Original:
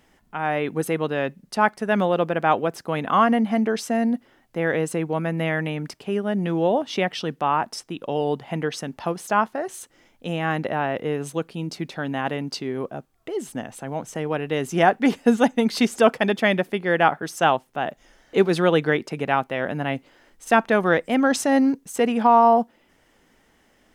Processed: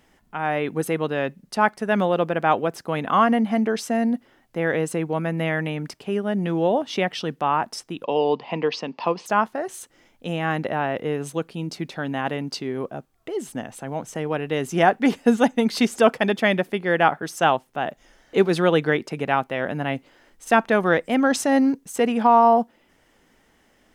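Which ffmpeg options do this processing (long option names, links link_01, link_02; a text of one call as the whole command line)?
ffmpeg -i in.wav -filter_complex "[0:a]asettb=1/sr,asplit=3[link_01][link_02][link_03];[link_01]atrim=end=8.044[link_04];[link_02]atrim=start=8.04:end=9.26,asetpts=PTS-STARTPTS,afade=type=in:duration=0.004:curve=qsin,afade=type=out:start_time=1.216:duration=0.004:curve=qsin,highpass=frequency=170:width=0.5412,highpass=frequency=170:width=1.3066,equalizer=frequency=480:width_type=q:width=4:gain=5,equalizer=frequency=1000:width_type=q:width=4:gain=10,equalizer=frequency=1500:width_type=q:width=4:gain=-7,equalizer=frequency=2600:width_type=q:width=4:gain=8,equalizer=frequency=4700:width_type=q:width=4:gain=8,lowpass=frequency=5200:width=0.5412,lowpass=frequency=5200:width=1.3066[link_05];[link_03]atrim=start=9.256[link_06];[link_04][link_05]acrossfade=duration=0.004:curve1=hsin:curve2=qsin[link_07];[link_07][link_06]acrossfade=duration=0.004:curve1=qsin:curve2=hsin" out.wav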